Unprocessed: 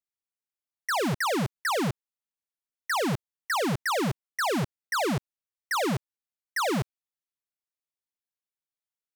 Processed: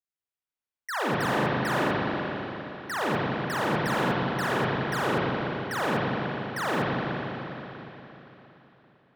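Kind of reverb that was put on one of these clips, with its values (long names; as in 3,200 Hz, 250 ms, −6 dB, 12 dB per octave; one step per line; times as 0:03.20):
spring reverb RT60 3.7 s, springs 38/56 ms, chirp 65 ms, DRR −8 dB
level −6.5 dB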